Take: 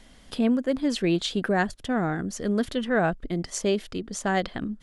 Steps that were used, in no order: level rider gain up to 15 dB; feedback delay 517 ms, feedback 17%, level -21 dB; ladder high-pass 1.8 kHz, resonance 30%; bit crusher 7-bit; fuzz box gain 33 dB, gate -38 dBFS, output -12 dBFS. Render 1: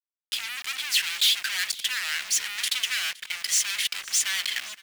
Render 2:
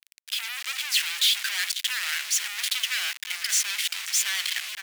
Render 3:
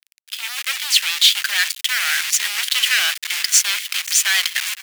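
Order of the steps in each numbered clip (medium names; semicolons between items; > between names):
level rider > fuzz box > ladder high-pass > bit crusher > feedback delay; bit crusher > level rider > feedback delay > fuzz box > ladder high-pass; feedback delay > bit crusher > fuzz box > ladder high-pass > level rider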